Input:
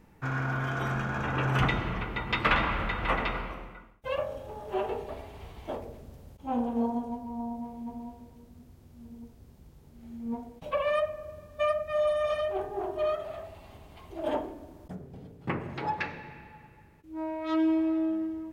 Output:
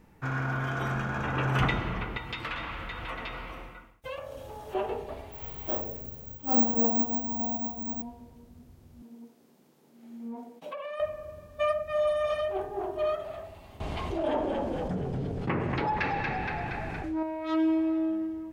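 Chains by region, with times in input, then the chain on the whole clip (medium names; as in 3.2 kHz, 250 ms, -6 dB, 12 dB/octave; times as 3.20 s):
2.17–4.75 s: compression 3:1, threshold -36 dBFS + treble shelf 2.5 kHz +8.5 dB + comb of notches 200 Hz
5.32–8.02 s: doubling 37 ms -2.5 dB + careless resampling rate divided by 2×, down none, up zero stuff
9.02–11.00 s: high-pass 210 Hz 24 dB/octave + compression 12:1, threshold -34 dBFS
13.80–17.23 s: Bessel low-pass 6 kHz + frequency-shifting echo 234 ms, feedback 43%, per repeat -51 Hz, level -9 dB + level flattener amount 70%
whole clip: none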